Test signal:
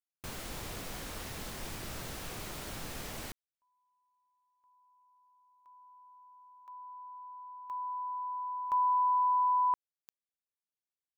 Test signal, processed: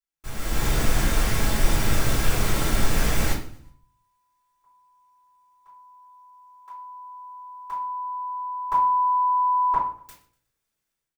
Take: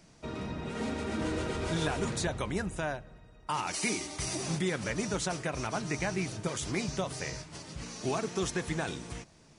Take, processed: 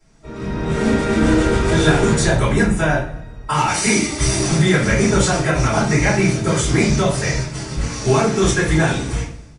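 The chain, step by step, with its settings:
automatic gain control gain up to 14 dB
on a send: repeating echo 122 ms, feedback 40%, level −21 dB
on the sum: rectangular room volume 41 cubic metres, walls mixed, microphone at 3 metres
level −12 dB

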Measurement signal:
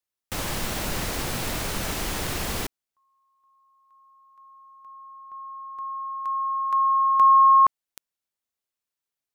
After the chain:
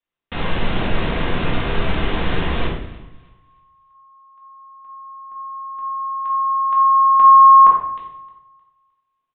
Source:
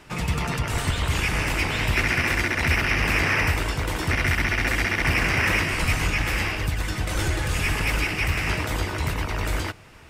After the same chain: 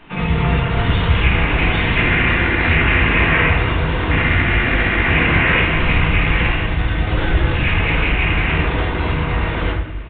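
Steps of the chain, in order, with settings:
feedback echo with a high-pass in the loop 309 ms, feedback 28%, high-pass 340 Hz, level −20.5 dB
rectangular room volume 220 cubic metres, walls mixed, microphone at 1.7 metres
downsampling to 8,000 Hz
level +1.5 dB

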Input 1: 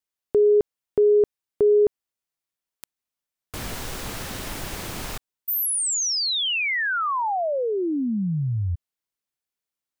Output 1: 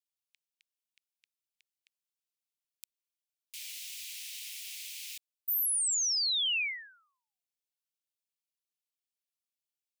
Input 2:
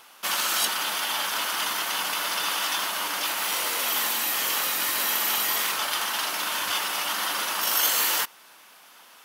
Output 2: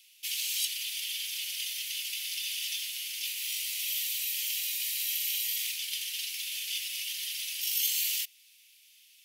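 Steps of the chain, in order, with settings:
Butterworth high-pass 2,300 Hz 48 dB per octave
level −5.5 dB

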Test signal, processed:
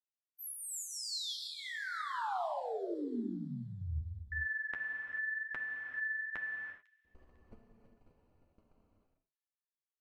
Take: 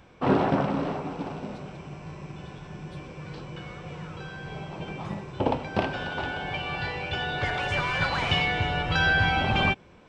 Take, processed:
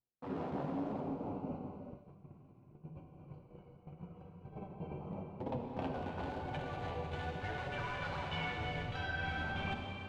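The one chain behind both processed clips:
adaptive Wiener filter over 25 samples
noise gate −36 dBFS, range −37 dB
high-shelf EQ 5,400 Hz −6.5 dB
reversed playback
downward compressor 6 to 1, threshold −40 dBFS
reversed playback
flanger 0.91 Hz, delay 7.1 ms, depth 6.8 ms, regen +27%
on a send: delay with a high-pass on its return 500 ms, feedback 37%, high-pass 3,800 Hz, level −16 dB
on the sum: reverb whose tail is shaped and stops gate 460 ms flat, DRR 1.5 dB
every ending faded ahead of time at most 190 dB per second
level +4 dB

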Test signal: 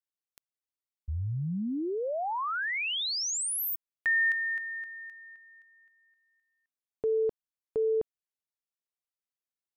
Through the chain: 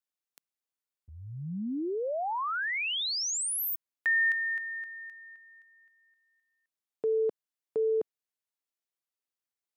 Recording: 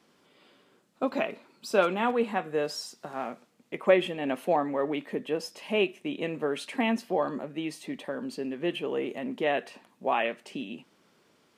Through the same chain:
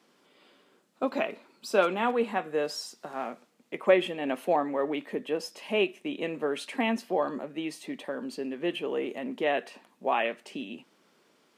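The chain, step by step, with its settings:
high-pass filter 190 Hz 12 dB per octave

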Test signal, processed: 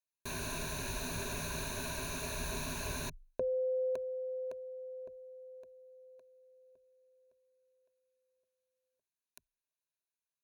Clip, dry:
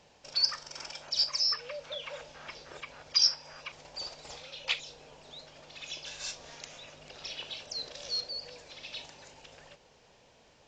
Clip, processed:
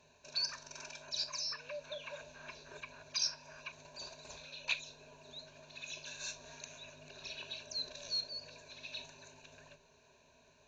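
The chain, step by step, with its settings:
EQ curve with evenly spaced ripples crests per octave 1.5, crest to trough 14 dB
level −7 dB

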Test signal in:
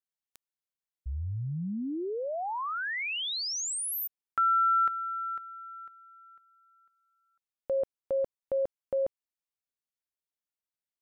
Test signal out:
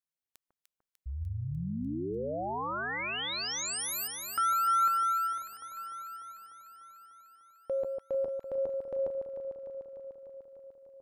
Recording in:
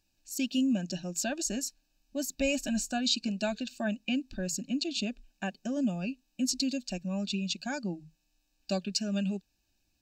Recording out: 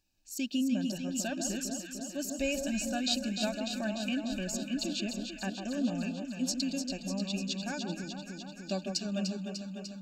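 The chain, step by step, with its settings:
delay that swaps between a low-pass and a high-pass 149 ms, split 1,300 Hz, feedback 84%, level −5 dB
level −3 dB

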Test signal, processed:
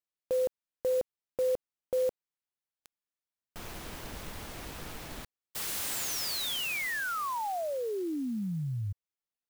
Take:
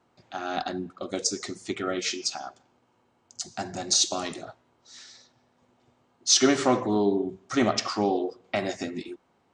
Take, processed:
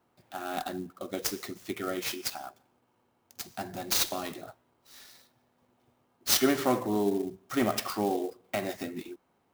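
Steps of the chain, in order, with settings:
converter with an unsteady clock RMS 0.03 ms
level −4 dB

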